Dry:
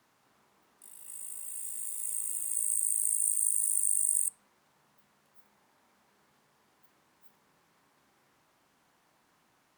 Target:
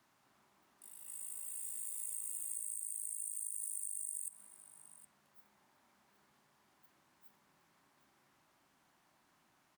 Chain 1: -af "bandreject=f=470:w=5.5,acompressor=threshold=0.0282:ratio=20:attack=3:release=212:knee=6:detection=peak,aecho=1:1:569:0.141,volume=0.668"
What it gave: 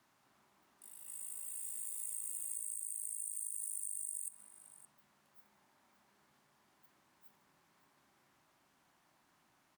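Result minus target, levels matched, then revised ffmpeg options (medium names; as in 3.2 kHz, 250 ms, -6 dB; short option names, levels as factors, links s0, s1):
echo 196 ms early
-af "bandreject=f=470:w=5.5,acompressor=threshold=0.0282:ratio=20:attack=3:release=212:knee=6:detection=peak,aecho=1:1:765:0.141,volume=0.668"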